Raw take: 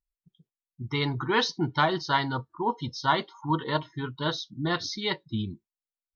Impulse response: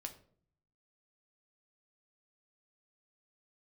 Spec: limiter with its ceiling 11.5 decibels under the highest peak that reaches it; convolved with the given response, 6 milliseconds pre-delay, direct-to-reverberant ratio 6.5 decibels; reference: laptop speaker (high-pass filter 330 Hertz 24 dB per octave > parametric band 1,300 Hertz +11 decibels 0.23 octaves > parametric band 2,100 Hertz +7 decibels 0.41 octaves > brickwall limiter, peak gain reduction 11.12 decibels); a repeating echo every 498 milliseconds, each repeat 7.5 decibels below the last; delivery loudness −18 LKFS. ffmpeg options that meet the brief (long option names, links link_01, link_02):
-filter_complex "[0:a]alimiter=limit=-22dB:level=0:latency=1,aecho=1:1:498|996|1494|1992|2490:0.422|0.177|0.0744|0.0312|0.0131,asplit=2[link_01][link_02];[1:a]atrim=start_sample=2205,adelay=6[link_03];[link_02][link_03]afir=irnorm=-1:irlink=0,volume=-3dB[link_04];[link_01][link_04]amix=inputs=2:normalize=0,highpass=frequency=330:width=0.5412,highpass=frequency=330:width=1.3066,equalizer=frequency=1300:width_type=o:width=0.23:gain=11,equalizer=frequency=2100:width_type=o:width=0.41:gain=7,volume=17.5dB,alimiter=limit=-8.5dB:level=0:latency=1"